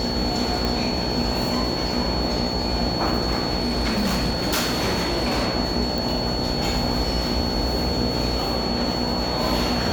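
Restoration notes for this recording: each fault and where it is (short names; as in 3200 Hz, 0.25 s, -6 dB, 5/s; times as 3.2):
buzz 60 Hz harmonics 15 -28 dBFS
tone 4400 Hz -28 dBFS
0.65 pop
3.6–5.48 clipped -18 dBFS
5.98 pop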